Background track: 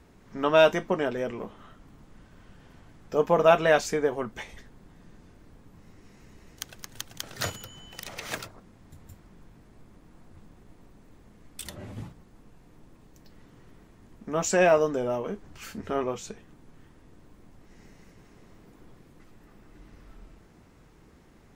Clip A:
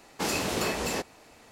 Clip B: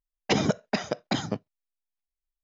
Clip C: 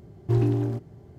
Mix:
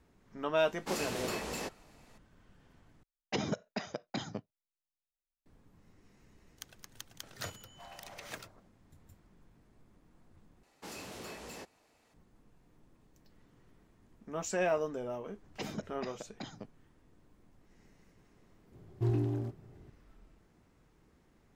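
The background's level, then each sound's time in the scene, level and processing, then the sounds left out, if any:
background track -10.5 dB
0.67 s: add A -8.5 dB
3.03 s: replace with B -10.5 dB
7.50 s: add C -10 dB + brick-wall FIR high-pass 520 Hz
10.63 s: replace with A -15 dB + saturation -23.5 dBFS
15.29 s: add B -17 dB
18.72 s: add C -8.5 dB

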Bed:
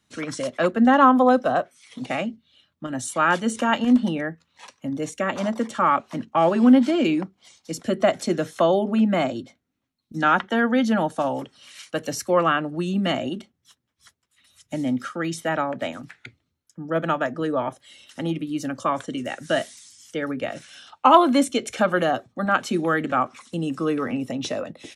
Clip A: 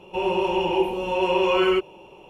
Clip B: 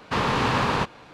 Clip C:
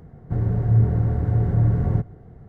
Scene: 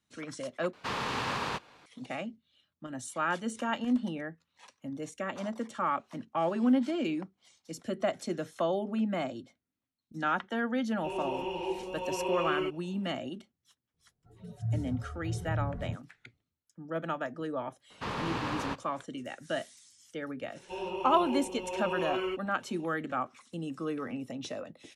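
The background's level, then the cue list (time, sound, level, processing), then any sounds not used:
bed -11 dB
0.73 s: replace with B -10 dB + tilt EQ +1.5 dB/octave
10.90 s: add A -12.5 dB
13.94 s: add C -14.5 dB + spectral noise reduction 23 dB
17.90 s: add B -12 dB
20.56 s: add A -13.5 dB

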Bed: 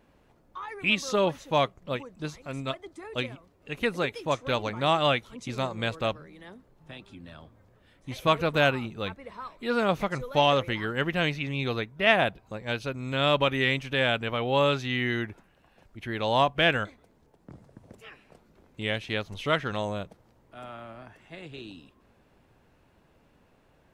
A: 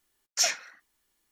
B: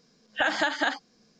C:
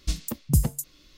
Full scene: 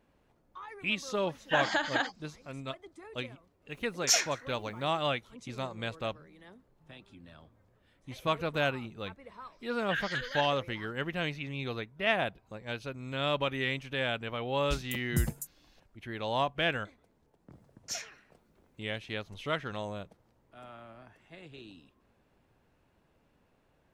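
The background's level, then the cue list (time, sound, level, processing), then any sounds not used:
bed -7 dB
1.13 s: add B -4 dB
3.70 s: add A -0.5 dB
9.52 s: add B -7 dB + elliptic band-pass 1.5–6 kHz
14.63 s: add C -8.5 dB
17.51 s: add A -13 dB

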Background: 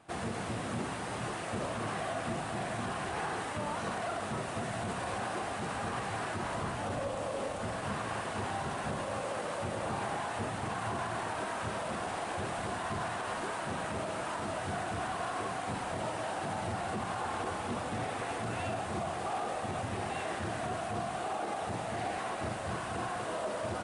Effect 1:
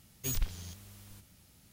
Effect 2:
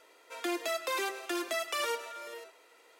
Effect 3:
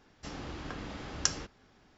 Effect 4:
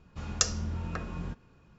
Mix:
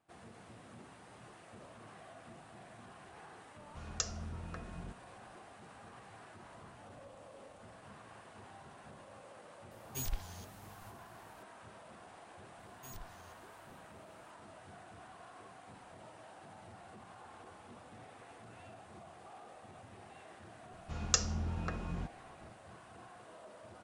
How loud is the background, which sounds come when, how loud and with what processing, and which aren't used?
background -18.5 dB
3.59 s: add 4 -10 dB
9.71 s: add 1 -5.5 dB
12.59 s: add 1 -15.5 dB + peak limiter -25 dBFS
20.73 s: add 4 -3 dB
not used: 2, 3

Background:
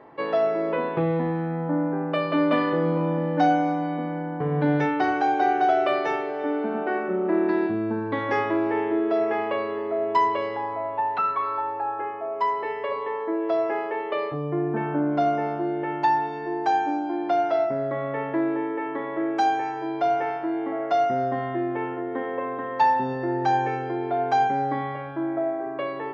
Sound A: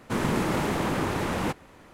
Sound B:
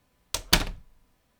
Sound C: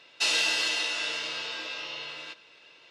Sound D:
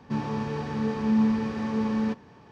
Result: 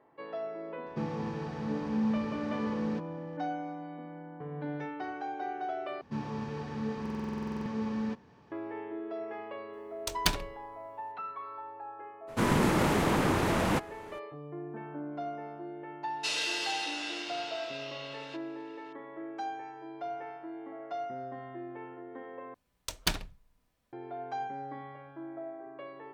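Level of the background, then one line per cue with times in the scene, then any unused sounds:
background -15.5 dB
0.86 s: add D -7.5 dB
6.01 s: replace with D -7 dB + buffer glitch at 1.00 s, samples 2048, times 13
9.73 s: add B -7 dB
12.27 s: add A, fades 0.02 s
16.03 s: add C -7 dB
22.54 s: replace with B -8.5 dB

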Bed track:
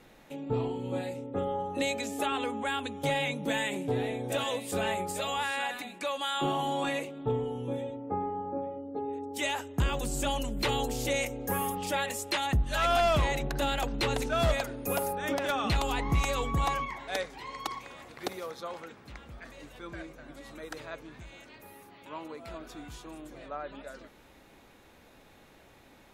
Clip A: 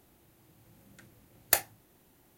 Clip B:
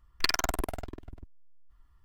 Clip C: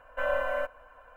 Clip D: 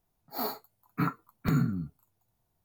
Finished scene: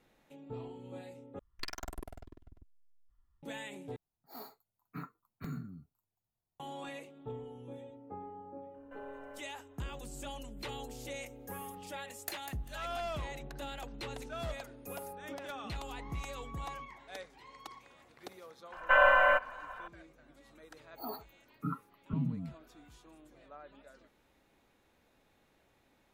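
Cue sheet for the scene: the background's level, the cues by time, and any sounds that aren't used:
bed track -13 dB
1.39 s: replace with B -15.5 dB + bass shelf 500 Hz +4.5 dB
3.96 s: replace with D -15 dB
8.74 s: add C -16 dB + compression 2:1, threshold -36 dBFS
10.75 s: add A -17 dB + feedback delay 197 ms, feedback 24%, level -9 dB
18.72 s: add C -0.5 dB + high-order bell 1.6 kHz +10 dB 2.5 oct
20.65 s: add D -7 dB + spectral gate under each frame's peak -15 dB strong

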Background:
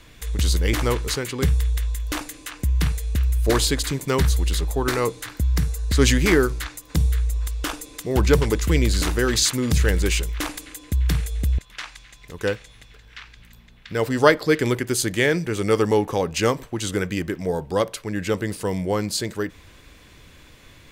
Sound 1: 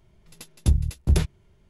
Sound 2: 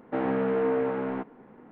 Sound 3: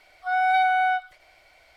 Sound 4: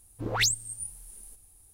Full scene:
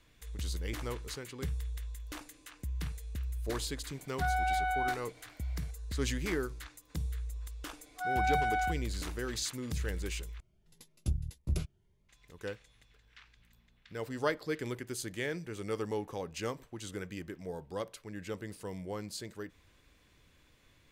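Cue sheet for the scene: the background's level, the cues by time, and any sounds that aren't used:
background -16.5 dB
3.95 s: add 3 -4.5 dB + peak limiter -21 dBFS
7.74 s: add 3 -10 dB
10.40 s: replace with 1 -12.5 dB + Shepard-style phaser rising 1.8 Hz
not used: 2, 4

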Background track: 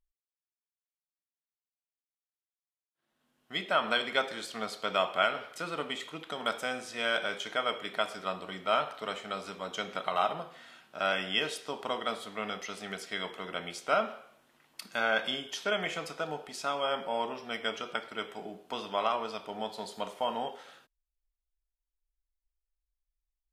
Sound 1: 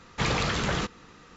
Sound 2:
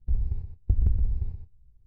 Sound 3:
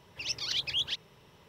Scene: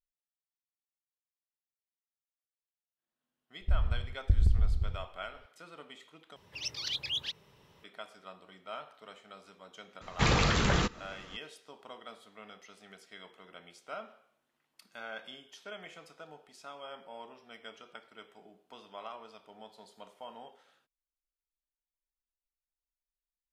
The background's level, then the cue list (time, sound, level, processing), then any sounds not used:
background track -14.5 dB
3.60 s: add 2 -2 dB
6.36 s: replace with 3 -3.5 dB
10.01 s: add 1 -0.5 dB + bass shelf 77 Hz +7 dB

